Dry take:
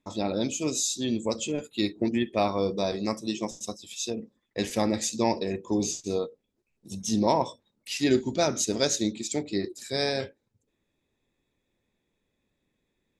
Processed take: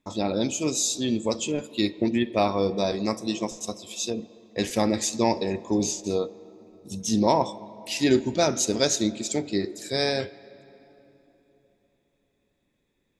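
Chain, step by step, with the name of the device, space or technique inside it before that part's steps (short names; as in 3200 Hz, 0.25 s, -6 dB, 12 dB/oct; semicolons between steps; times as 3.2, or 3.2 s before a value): filtered reverb send (on a send: HPF 250 Hz 6 dB/oct + LPF 3400 Hz 12 dB/oct + reverb RT60 3.5 s, pre-delay 49 ms, DRR 17.5 dB); on the sum: gain +2.5 dB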